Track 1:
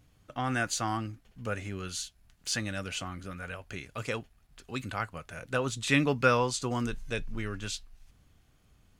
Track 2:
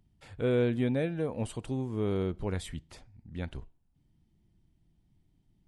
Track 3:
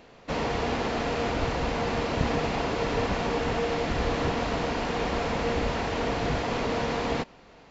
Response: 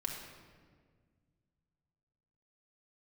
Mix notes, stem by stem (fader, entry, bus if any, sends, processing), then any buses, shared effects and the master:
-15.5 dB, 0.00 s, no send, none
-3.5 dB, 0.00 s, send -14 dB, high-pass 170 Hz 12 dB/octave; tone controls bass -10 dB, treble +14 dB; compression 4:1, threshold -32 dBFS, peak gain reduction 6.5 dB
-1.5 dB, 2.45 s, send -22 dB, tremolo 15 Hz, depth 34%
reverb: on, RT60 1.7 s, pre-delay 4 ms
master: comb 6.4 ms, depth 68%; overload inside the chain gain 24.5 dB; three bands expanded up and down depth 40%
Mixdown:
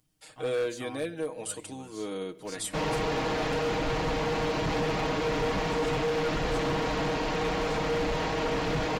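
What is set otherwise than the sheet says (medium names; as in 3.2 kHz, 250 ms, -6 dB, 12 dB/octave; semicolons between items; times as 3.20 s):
stem 2: missing compression 4:1, threshold -32 dBFS, peak gain reduction 6.5 dB; stem 3: missing tremolo 15 Hz, depth 34%; master: missing three bands expanded up and down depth 40%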